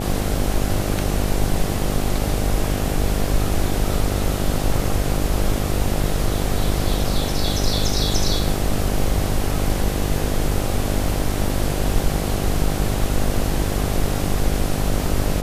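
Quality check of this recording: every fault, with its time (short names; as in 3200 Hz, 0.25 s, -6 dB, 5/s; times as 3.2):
buzz 50 Hz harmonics 16 -24 dBFS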